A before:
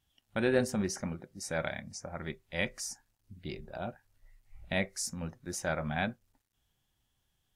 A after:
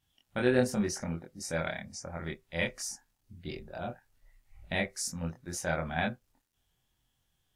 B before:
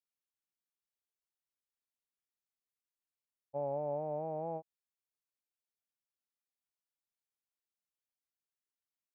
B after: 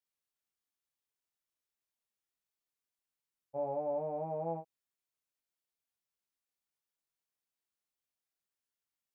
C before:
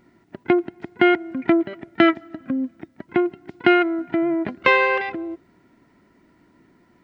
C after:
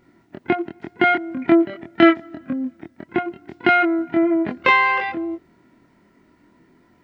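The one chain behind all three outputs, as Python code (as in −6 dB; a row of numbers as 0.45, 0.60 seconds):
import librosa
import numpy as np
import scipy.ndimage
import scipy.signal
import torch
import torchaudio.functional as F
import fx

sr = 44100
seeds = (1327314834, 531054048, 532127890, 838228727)

y = fx.doubler(x, sr, ms=24.0, db=-2)
y = F.gain(torch.from_numpy(y), -1.0).numpy()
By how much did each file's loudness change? +1.5, +1.0, +1.5 LU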